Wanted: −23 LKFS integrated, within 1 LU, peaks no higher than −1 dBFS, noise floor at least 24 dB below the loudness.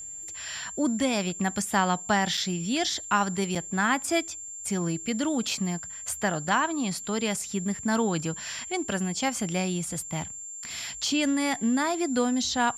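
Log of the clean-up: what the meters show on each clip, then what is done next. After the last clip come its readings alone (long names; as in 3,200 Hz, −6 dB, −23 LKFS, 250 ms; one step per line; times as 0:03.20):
number of dropouts 2; longest dropout 4.6 ms; interfering tone 7,300 Hz; level of the tone −37 dBFS; integrated loudness −27.5 LKFS; sample peak −10.5 dBFS; target loudness −23.0 LKFS
→ repair the gap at 0:02.37/0:03.55, 4.6 ms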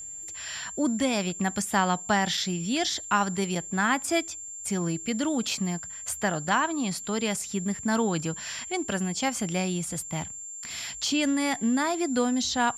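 number of dropouts 0; interfering tone 7,300 Hz; level of the tone −37 dBFS
→ notch filter 7,300 Hz, Q 30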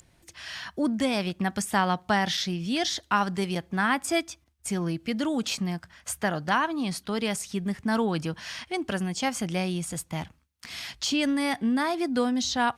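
interfering tone none found; integrated loudness −28.0 LKFS; sample peak −11.0 dBFS; target loudness −23.0 LKFS
→ level +5 dB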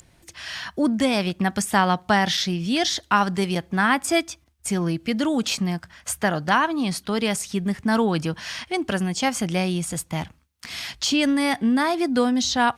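integrated loudness −23.0 LKFS; sample peak −6.0 dBFS; background noise floor −59 dBFS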